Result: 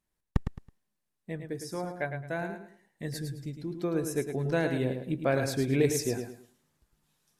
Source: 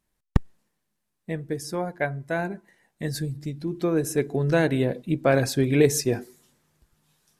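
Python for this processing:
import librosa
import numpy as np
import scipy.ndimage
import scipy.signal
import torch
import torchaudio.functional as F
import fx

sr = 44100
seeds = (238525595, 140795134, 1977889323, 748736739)

y = fx.echo_feedback(x, sr, ms=108, feedback_pct=27, wet_db=-7.5)
y = F.gain(torch.from_numpy(y), -7.0).numpy()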